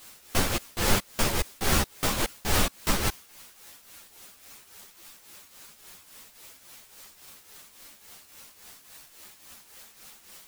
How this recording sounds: a quantiser's noise floor 8-bit, dither triangular; tremolo triangle 3.6 Hz, depth 70%; a shimmering, thickened sound

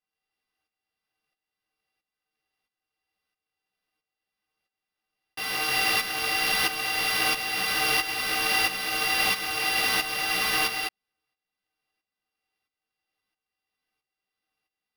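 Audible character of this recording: a buzz of ramps at a fixed pitch in blocks of 16 samples; tremolo saw up 1.5 Hz, depth 70%; aliases and images of a low sample rate 7500 Hz, jitter 0%; a shimmering, thickened sound

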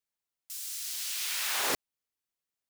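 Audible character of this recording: noise floor -90 dBFS; spectral tilt +0.5 dB/oct

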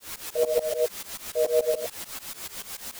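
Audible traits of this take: a quantiser's noise floor 6-bit, dither triangular; tremolo saw up 6.9 Hz, depth 100%; a shimmering, thickened sound

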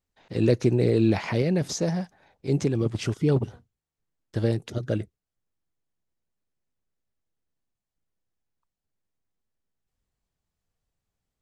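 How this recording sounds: noise floor -87 dBFS; spectral tilt -8.0 dB/oct

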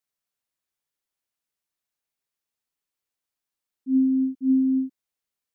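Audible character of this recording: noise floor -88 dBFS; spectral tilt -3.0 dB/oct

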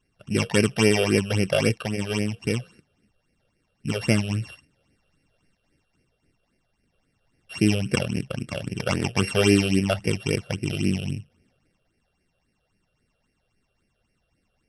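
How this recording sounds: a buzz of ramps at a fixed pitch in blocks of 16 samples; phasing stages 8, 3.7 Hz, lowest notch 260–1100 Hz; AAC

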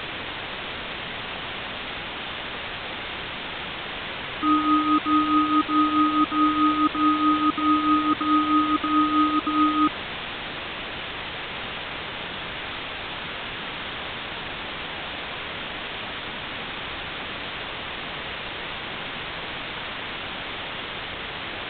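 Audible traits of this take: tremolo triangle 4.7 Hz, depth 70%; a quantiser's noise floor 6-bit, dither triangular; A-law

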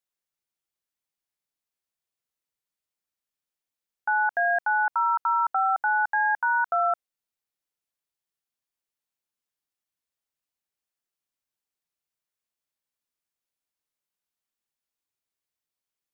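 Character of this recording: noise floor -90 dBFS; spectral tilt +1.5 dB/oct

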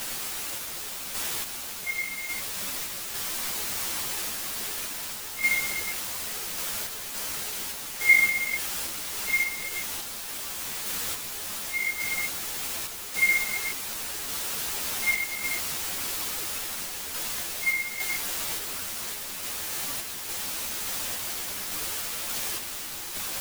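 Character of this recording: a quantiser's noise floor 6-bit, dither triangular; random-step tremolo; a shimmering, thickened sound

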